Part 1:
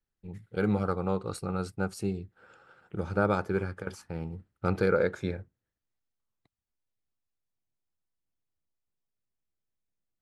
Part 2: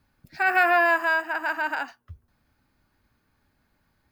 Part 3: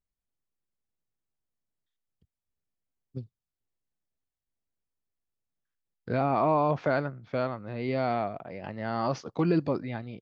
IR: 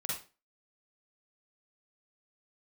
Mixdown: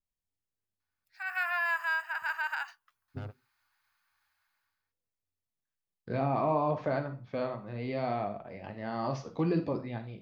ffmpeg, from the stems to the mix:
-filter_complex "[0:a]lowshelf=f=120:t=q:w=3:g=11,acompressor=threshold=-31dB:ratio=10,asoftclip=type=tanh:threshold=-37.5dB,volume=-1.5dB[a];[1:a]highpass=f=960:w=0.5412,highpass=f=960:w=1.3066,dynaudnorm=f=220:g=5:m=15.5dB,adelay=800,volume=-17.5dB[b];[2:a]bandreject=f=1.4k:w=11,flanger=delay=7.7:depth=8.4:regen=-54:speed=0.71:shape=triangular,adynamicequalizer=threshold=0.00794:dfrequency=1500:dqfactor=0.7:tfrequency=1500:tqfactor=0.7:attack=5:release=100:ratio=0.375:range=1.5:mode=cutabove:tftype=highshelf,volume=-2dB,asplit=3[c][d][e];[d]volume=-9dB[f];[e]apad=whole_len=450371[g];[a][g]sidechaingate=range=-59dB:threshold=-52dB:ratio=16:detection=peak[h];[3:a]atrim=start_sample=2205[i];[f][i]afir=irnorm=-1:irlink=0[j];[h][b][c][j]amix=inputs=4:normalize=0"

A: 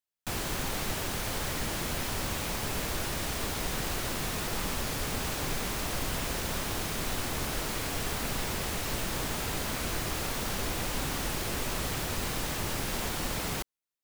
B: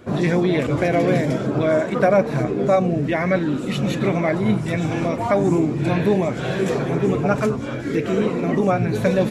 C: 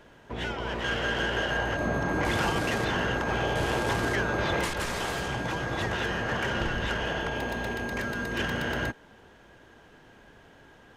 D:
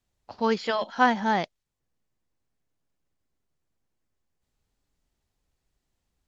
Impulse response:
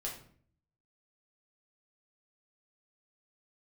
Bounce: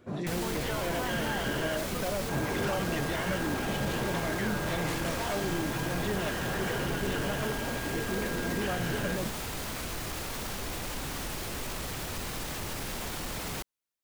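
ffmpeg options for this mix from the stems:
-filter_complex "[0:a]volume=0.5dB[a];[1:a]volume=-12.5dB[b];[2:a]adelay=250,volume=1dB,asplit=3[c][d][e];[c]atrim=end=1.77,asetpts=PTS-STARTPTS,afade=t=out:st=1.766:d=0.004:c=hsin[f];[d]atrim=start=1.77:end=2.29,asetpts=PTS-STARTPTS,volume=0[g];[e]atrim=start=2.29,asetpts=PTS-STARTPTS,afade=t=in:d=0.004:c=hsin[h];[f][g][h]concat=n=3:v=0:a=1[i];[3:a]volume=-7.5dB[j];[b][j]amix=inputs=2:normalize=0,alimiter=level_in=2dB:limit=-24dB:level=0:latency=1,volume=-2dB,volume=0dB[k];[a][i]amix=inputs=2:normalize=0,asoftclip=type=tanh:threshold=-22.5dB,alimiter=level_in=4dB:limit=-24dB:level=0:latency=1,volume=-4dB,volume=0dB[l];[k][l]amix=inputs=2:normalize=0"

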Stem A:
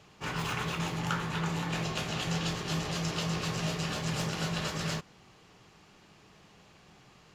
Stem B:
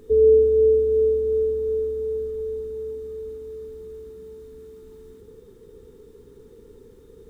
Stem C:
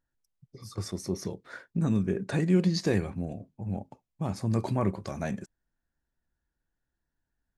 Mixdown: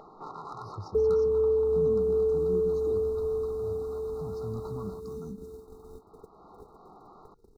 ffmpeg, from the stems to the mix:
-filter_complex "[0:a]highpass=560,adynamicsmooth=sensitivity=1:basefreq=800,asoftclip=type=hard:threshold=-32dB,volume=-3.5dB[a];[1:a]acompressor=threshold=-22dB:ratio=6,agate=range=-50dB:threshold=-41dB:ratio=16:detection=peak,adelay=850,volume=1.5dB[b];[2:a]lowpass=5.3k,lowshelf=f=150:g=7.5,asplit=2[c][d];[d]afreqshift=0.33[e];[c][e]amix=inputs=2:normalize=1,volume=-12.5dB[f];[a][b][f]amix=inputs=3:normalize=0,afftfilt=real='re*(1-between(b*sr/4096,1400,3700))':imag='im*(1-between(b*sr/4096,1400,3700))':win_size=4096:overlap=0.75,equalizer=f=570:w=3.9:g=-10.5,acompressor=mode=upward:threshold=-32dB:ratio=2.5"

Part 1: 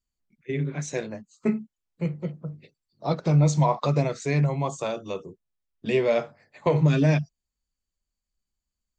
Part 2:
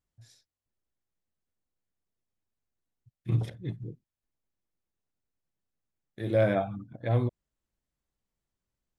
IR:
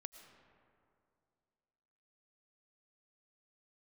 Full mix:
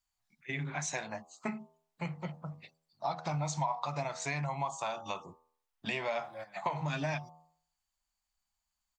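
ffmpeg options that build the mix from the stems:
-filter_complex "[0:a]bandreject=f=80.56:t=h:w=4,bandreject=f=161.12:t=h:w=4,bandreject=f=241.68:t=h:w=4,bandreject=f=322.24:t=h:w=4,bandreject=f=402.8:t=h:w=4,bandreject=f=483.36:t=h:w=4,bandreject=f=563.92:t=h:w=4,bandreject=f=644.48:t=h:w=4,bandreject=f=725.04:t=h:w=4,bandreject=f=805.6:t=h:w=4,bandreject=f=886.16:t=h:w=4,bandreject=f=966.72:t=h:w=4,bandreject=f=1.04728k:t=h:w=4,bandreject=f=1.12784k:t=h:w=4,bandreject=f=1.2084k:t=h:w=4,volume=3dB,asplit=2[a][b];[1:a]aecho=1:1:5.5:0.92,acrusher=bits=9:mix=0:aa=0.000001,volume=-16dB[c];[b]apad=whole_len=396375[d];[c][d]sidechaingate=range=-15dB:threshold=-46dB:ratio=16:detection=peak[e];[a][e]amix=inputs=2:normalize=0,lowshelf=f=600:t=q:w=3:g=-9.5,acompressor=threshold=-33dB:ratio=4"

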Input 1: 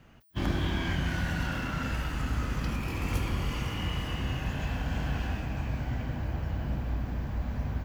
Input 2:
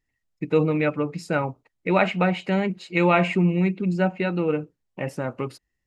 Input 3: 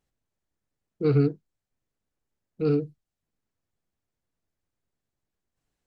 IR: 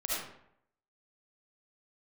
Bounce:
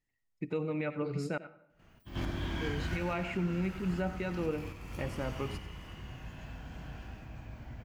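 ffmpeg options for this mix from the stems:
-filter_complex "[0:a]adelay=1700,volume=-0.5dB,afade=t=out:st=2.91:d=0.34:silence=0.354813,asplit=3[a][b][c];[b]volume=-16dB[d];[c]volume=-4.5dB[e];[1:a]volume=-7.5dB,asplit=3[f][g][h];[f]atrim=end=1.38,asetpts=PTS-STARTPTS,afade=t=out:st=1.376:d=0.004:c=hsin[i];[g]atrim=start=1.38:end=2.73,asetpts=PTS-STARTPTS,volume=0[j];[h]atrim=start=2.73,asetpts=PTS-STARTPTS,afade=t=in:d=0.004:c=hsin[k];[i][j][k]concat=n=3:v=0:a=1,asplit=4[l][m][n][o];[m]volume=-21dB[p];[n]volume=-14dB[q];[2:a]volume=-14dB[r];[o]apad=whole_len=420844[s];[a][s]sidechaingate=range=-33dB:threshold=-46dB:ratio=16:detection=peak[t];[3:a]atrim=start_sample=2205[u];[d][p]amix=inputs=2:normalize=0[v];[v][u]afir=irnorm=-1:irlink=0[w];[e][q]amix=inputs=2:normalize=0,aecho=0:1:93:1[x];[t][l][r][w][x]amix=inputs=5:normalize=0,alimiter=limit=-24dB:level=0:latency=1:release=462"

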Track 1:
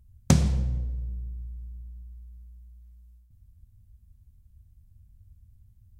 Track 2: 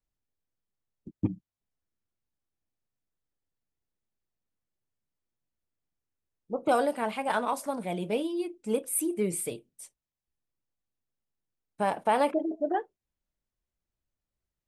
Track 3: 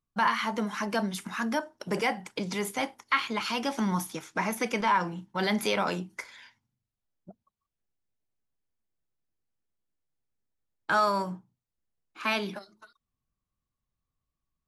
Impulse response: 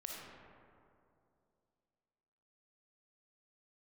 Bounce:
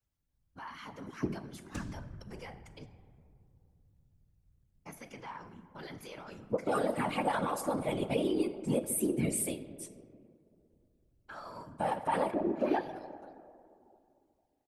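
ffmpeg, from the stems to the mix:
-filter_complex "[0:a]adelay=1450,volume=-14dB[a];[1:a]aecho=1:1:3.6:0.94,alimiter=limit=-20dB:level=0:latency=1:release=79,volume=1.5dB,asplit=2[b][c];[c]volume=-6dB[d];[2:a]bandreject=f=3.7k:w=16,alimiter=limit=-23dB:level=0:latency=1:release=202,adelay=400,volume=-9.5dB,asplit=3[e][f][g];[e]atrim=end=2.86,asetpts=PTS-STARTPTS,afade=t=out:st=2.856:d=0.004:c=hsin[h];[f]atrim=start=2.86:end=4.86,asetpts=PTS-STARTPTS,volume=0[i];[g]atrim=start=4.86,asetpts=PTS-STARTPTS,afade=t=in:d=0.004:c=hsin[j];[h][i][j]concat=n=3:v=0:a=1,asplit=2[k][l];[l]volume=-7dB[m];[3:a]atrim=start_sample=2205[n];[d][m]amix=inputs=2:normalize=0[o];[o][n]afir=irnorm=-1:irlink=0[p];[a][b][k][p]amix=inputs=4:normalize=0,afftfilt=real='hypot(re,im)*cos(2*PI*random(0))':imag='hypot(re,im)*sin(2*PI*random(1))':win_size=512:overlap=0.75"

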